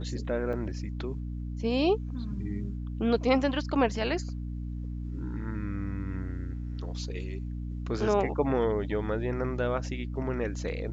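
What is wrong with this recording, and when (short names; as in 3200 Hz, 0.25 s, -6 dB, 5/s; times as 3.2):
hum 60 Hz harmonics 5 -35 dBFS
0.53 gap 2.5 ms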